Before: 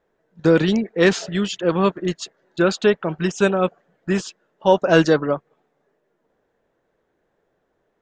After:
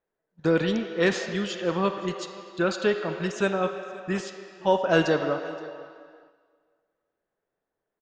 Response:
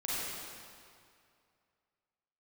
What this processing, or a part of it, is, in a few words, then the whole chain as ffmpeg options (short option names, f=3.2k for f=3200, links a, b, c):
filtered reverb send: -filter_complex "[0:a]asplit=2[a][b];[b]highpass=470,lowpass=4.8k[c];[1:a]atrim=start_sample=2205[d];[c][d]afir=irnorm=-1:irlink=0,volume=-9dB[e];[a][e]amix=inputs=2:normalize=0,agate=range=-9dB:threshold=-47dB:ratio=16:detection=peak,aecho=1:1:522:0.0841,volume=-7.5dB"